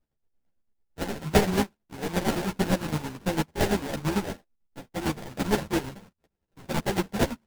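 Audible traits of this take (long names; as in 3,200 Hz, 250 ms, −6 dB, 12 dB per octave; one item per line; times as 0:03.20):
a buzz of ramps at a fixed pitch in blocks of 32 samples
chopped level 8.9 Hz, depth 60%, duty 40%
aliases and images of a low sample rate 1,200 Hz, jitter 20%
a shimmering, thickened sound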